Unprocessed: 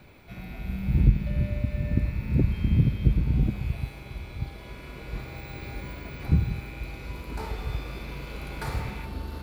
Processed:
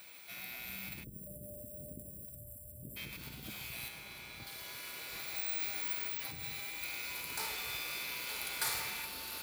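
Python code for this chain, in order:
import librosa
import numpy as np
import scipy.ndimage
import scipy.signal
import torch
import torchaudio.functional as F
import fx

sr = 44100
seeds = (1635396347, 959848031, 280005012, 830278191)

p1 = fx.cheby1_bandstop(x, sr, low_hz=120.0, high_hz=1500.0, order=4, at=(2.25, 2.83))
p2 = fx.over_compress(p1, sr, threshold_db=-25.0, ratio=-0.5)
p3 = p1 + F.gain(torch.from_numpy(p2), 2.5).numpy()
p4 = np.diff(p3, prepend=0.0)
p5 = p4 + fx.echo_single(p4, sr, ms=916, db=-10.0, dry=0)
p6 = fx.spec_erase(p5, sr, start_s=1.04, length_s=1.93, low_hz=670.0, high_hz=7300.0)
p7 = fx.high_shelf(p6, sr, hz=4100.0, db=-7.5, at=(3.88, 4.47))
p8 = fx.notch_comb(p7, sr, f0_hz=180.0, at=(6.08, 6.83))
y = F.gain(torch.from_numpy(p8), 3.0).numpy()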